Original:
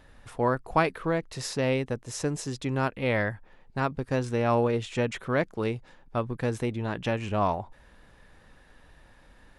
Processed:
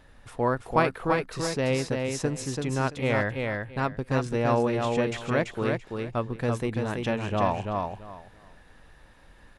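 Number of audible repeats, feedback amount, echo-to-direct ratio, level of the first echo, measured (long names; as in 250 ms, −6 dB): 3, 20%, −4.0 dB, −4.0 dB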